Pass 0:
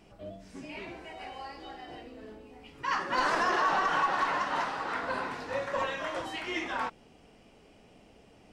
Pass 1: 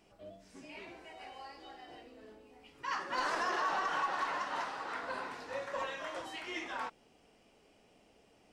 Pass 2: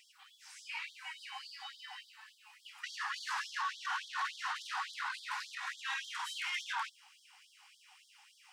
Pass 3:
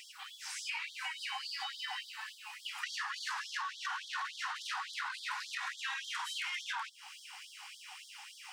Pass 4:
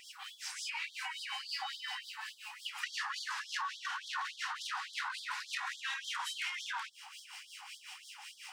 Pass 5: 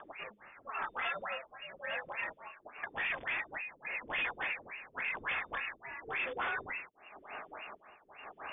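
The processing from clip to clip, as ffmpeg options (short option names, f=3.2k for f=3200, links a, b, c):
-af "bass=f=250:g=-6,treble=f=4k:g=3,volume=-6.5dB"
-af "alimiter=level_in=10.5dB:limit=-24dB:level=0:latency=1:release=12,volume=-10.5dB,asoftclip=type=tanh:threshold=-40dB,afftfilt=real='re*gte(b*sr/1024,730*pow(3200/730,0.5+0.5*sin(2*PI*3.5*pts/sr)))':imag='im*gte(b*sr/1024,730*pow(3200/730,0.5+0.5*sin(2*PI*3.5*pts/sr)))':win_size=1024:overlap=0.75,volume=10.5dB"
-af "acompressor=threshold=-48dB:ratio=10,volume=11.5dB"
-filter_complex "[0:a]acrossover=split=1600[a][b];[a]aeval=exprs='val(0)*(1-0.7/2+0.7/2*cos(2*PI*5.5*n/s))':c=same[c];[b]aeval=exprs='val(0)*(1-0.7/2-0.7/2*cos(2*PI*5.5*n/s))':c=same[d];[c][d]amix=inputs=2:normalize=0,volume=3.5dB"
-af "tremolo=f=0.94:d=0.82,aeval=exprs='0.0158*(abs(mod(val(0)/0.0158+3,4)-2)-1)':c=same,lowpass=f=3.1k:t=q:w=0.5098,lowpass=f=3.1k:t=q:w=0.6013,lowpass=f=3.1k:t=q:w=0.9,lowpass=f=3.1k:t=q:w=2.563,afreqshift=-3600,volume=7.5dB"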